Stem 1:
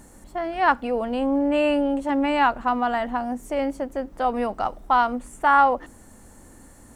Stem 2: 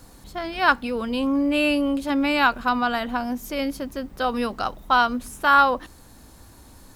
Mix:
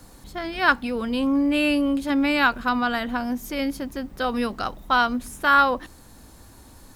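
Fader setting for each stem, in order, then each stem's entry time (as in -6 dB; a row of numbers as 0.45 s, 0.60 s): -12.0 dB, 0.0 dB; 0.00 s, 0.00 s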